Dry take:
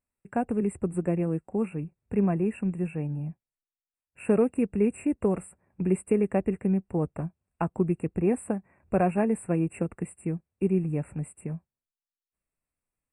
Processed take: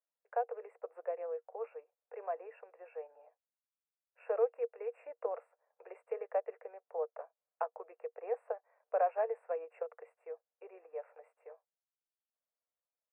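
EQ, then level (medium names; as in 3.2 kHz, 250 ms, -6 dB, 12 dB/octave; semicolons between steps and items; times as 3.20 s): rippled Chebyshev high-pass 460 Hz, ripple 3 dB; low-pass 1.1 kHz 12 dB/octave; -1.5 dB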